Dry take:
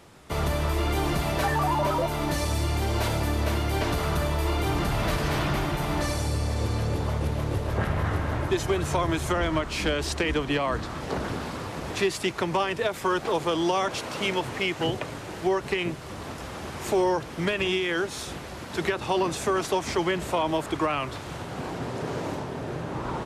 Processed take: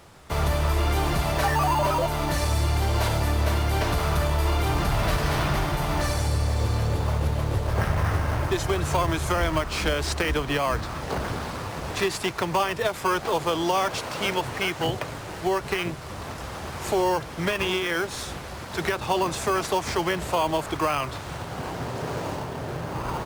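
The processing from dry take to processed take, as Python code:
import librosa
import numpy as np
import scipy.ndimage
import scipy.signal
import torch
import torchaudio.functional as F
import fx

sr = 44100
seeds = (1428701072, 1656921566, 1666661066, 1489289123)

p1 = fx.peak_eq(x, sr, hz=280.0, db=-7.0, octaves=1.9)
p2 = fx.sample_hold(p1, sr, seeds[0], rate_hz=3700.0, jitter_pct=0)
p3 = p1 + F.gain(torch.from_numpy(p2), -6.5).numpy()
y = F.gain(torch.from_numpy(p3), 1.5).numpy()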